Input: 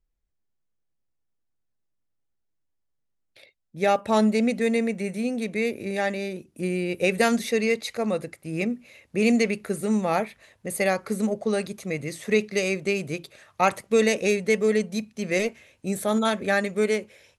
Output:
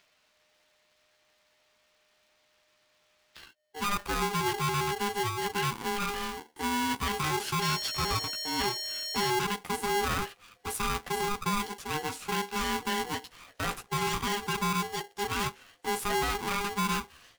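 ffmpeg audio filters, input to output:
-filter_complex "[0:a]acrossover=split=310|1100|5200[a][b][c][d];[c]acompressor=mode=upward:threshold=-40dB:ratio=2.5[e];[a][b][e][d]amix=inputs=4:normalize=0,flanger=delay=9.9:depth=6.1:regen=-2:speed=0.19:shape=sinusoidal,alimiter=limit=-22dB:level=0:latency=1:release=11,asettb=1/sr,asplit=3[f][g][h];[f]atrim=end=7.624[i];[g]atrim=start=7.62:end=9.3,asetpts=PTS-STARTPTS,afade=t=in:d=0.004:c=qsin,afade=t=out:st=1.676:d=0.004:c=qsin,aeval=exprs='val(0)+0.0224*sin(2*PI*4900*n/s)':c=same[j];[h]atrim=start=9.296[k];[i][j]acrossfade=d=0.004:c1=hsin:c2=qsin[l];[l][k]acrossfade=d=0.004:c1=qsin:c2=hsin,aeval=exprs='val(0)*sgn(sin(2*PI*610*n/s))':c=same"

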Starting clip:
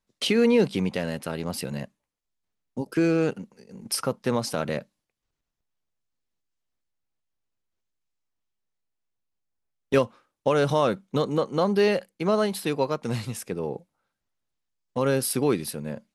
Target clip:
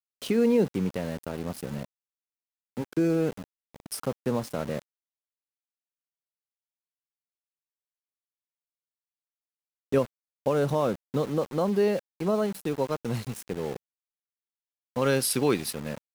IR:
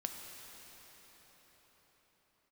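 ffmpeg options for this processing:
-af "asetnsamples=n=441:p=0,asendcmd='12.9 equalizer g -3.5;15.02 equalizer g 5',equalizer=f=3.4k:t=o:w=3:g=-9.5,aeval=exprs='val(0)*gte(abs(val(0)),0.0168)':c=same,volume=-1.5dB"

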